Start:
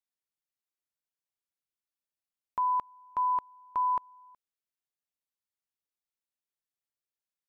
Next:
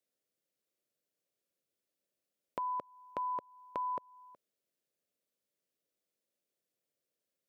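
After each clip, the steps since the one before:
high-pass filter 150 Hz
low shelf with overshoot 700 Hz +7 dB, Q 3
downward compressor 2 to 1, threshold −44 dBFS, peak gain reduction 7.5 dB
level +3.5 dB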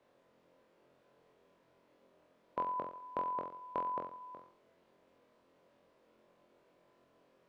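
compressor on every frequency bin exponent 0.6
low-pass filter 1,900 Hz 6 dB per octave
flutter between parallel walls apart 3.9 metres, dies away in 0.49 s
level +1 dB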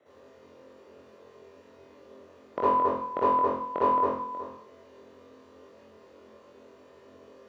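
convolution reverb RT60 0.50 s, pre-delay 54 ms, DRR −7.5 dB
level −3 dB

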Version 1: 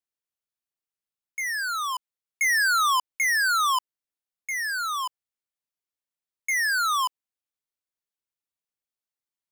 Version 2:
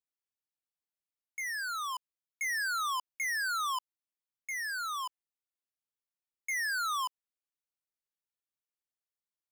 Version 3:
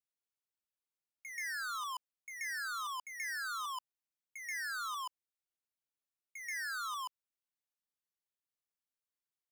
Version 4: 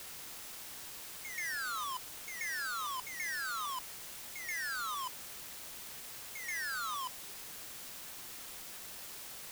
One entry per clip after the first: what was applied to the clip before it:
brickwall limiter −24.5 dBFS, peak gain reduction 3.5 dB; level −7.5 dB
output level in coarse steps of 10 dB; backwards echo 131 ms −6.5 dB
bit-depth reduction 8 bits, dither triangular; level +1 dB

